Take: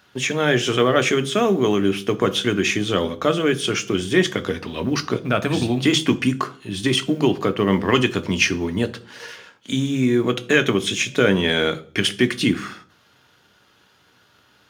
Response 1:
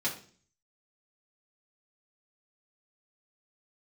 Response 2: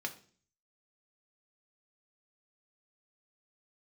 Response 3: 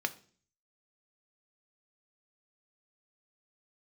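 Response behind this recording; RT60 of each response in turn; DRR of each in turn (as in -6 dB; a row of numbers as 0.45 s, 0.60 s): 3; 0.45 s, 0.45 s, 0.45 s; -4.5 dB, 4.5 dB, 9.0 dB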